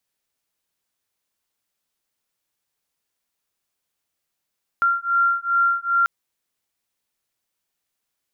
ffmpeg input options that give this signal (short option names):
-f lavfi -i "aevalsrc='0.1*(sin(2*PI*1380*t)+sin(2*PI*1382.5*t))':d=1.24:s=44100"